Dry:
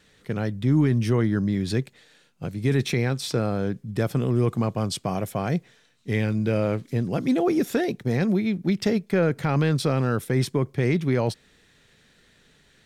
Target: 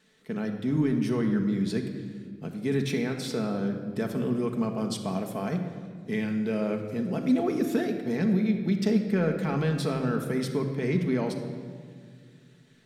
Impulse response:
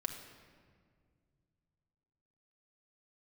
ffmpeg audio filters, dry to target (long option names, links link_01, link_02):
-filter_complex "[0:a]lowshelf=frequency=130:width_type=q:width=1.5:gain=-10[link_01];[1:a]atrim=start_sample=2205[link_02];[link_01][link_02]afir=irnorm=-1:irlink=0,volume=-5.5dB"